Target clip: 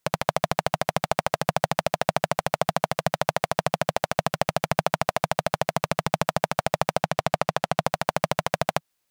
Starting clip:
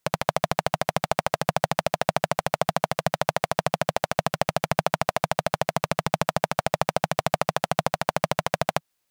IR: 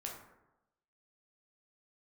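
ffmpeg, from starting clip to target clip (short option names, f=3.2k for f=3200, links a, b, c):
-filter_complex "[0:a]asettb=1/sr,asplit=3[a][b][c];[a]atrim=end=7.024[d];[b]atrim=start=7.02:end=7.84,asetpts=PTS-STARTPTS,afade=t=in:d=0.004:c=qsin,afade=t=out:st=0.816:d=0.004:c=qsin,highshelf=f=8.6k:g=-7.5[e];[c]atrim=start=7.836[f];[d][e]acrossfade=d=0.004:c1=hsin:c2=qsin[g];[g][f]acrossfade=d=0.004:c1=qsin:c2=hsin"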